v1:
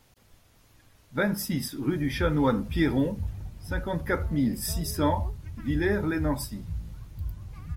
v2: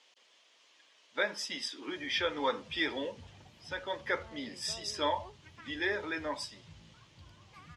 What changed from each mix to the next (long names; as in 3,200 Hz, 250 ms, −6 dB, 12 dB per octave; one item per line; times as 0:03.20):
speech: add loudspeaker in its box 430–7,200 Hz, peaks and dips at 780 Hz −6 dB, 1,400 Hz −7 dB, 3,100 Hz +7 dB
master: add meter weighting curve A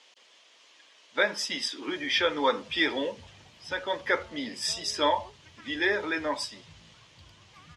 speech +6.5 dB